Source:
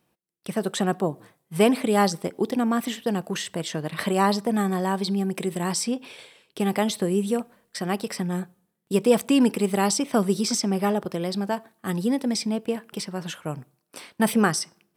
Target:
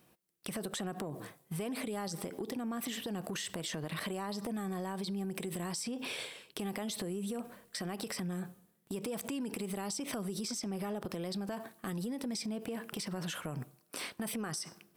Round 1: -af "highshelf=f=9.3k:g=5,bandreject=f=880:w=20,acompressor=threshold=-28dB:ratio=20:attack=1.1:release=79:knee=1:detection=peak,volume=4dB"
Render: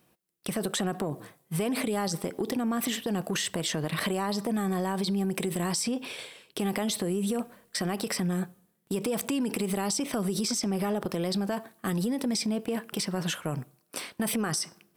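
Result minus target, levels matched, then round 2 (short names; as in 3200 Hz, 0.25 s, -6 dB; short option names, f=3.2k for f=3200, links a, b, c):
compressor: peak gain reduction -9 dB
-af "highshelf=f=9.3k:g=5,bandreject=f=880:w=20,acompressor=threshold=-37.5dB:ratio=20:attack=1.1:release=79:knee=1:detection=peak,volume=4dB"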